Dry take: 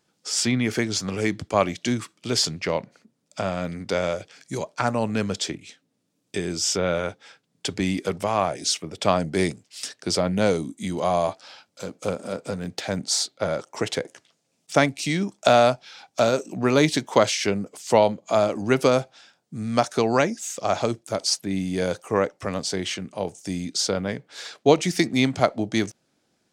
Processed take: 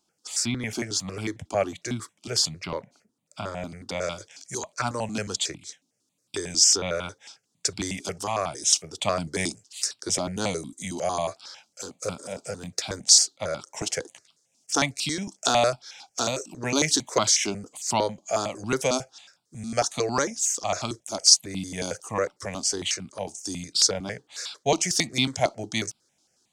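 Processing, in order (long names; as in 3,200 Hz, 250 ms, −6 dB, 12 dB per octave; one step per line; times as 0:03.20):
parametric band 6,100 Hz +4.5 dB 1.6 octaves, from 0:04.01 +14 dB
step-sequenced phaser 11 Hz 490–1,800 Hz
level −2.5 dB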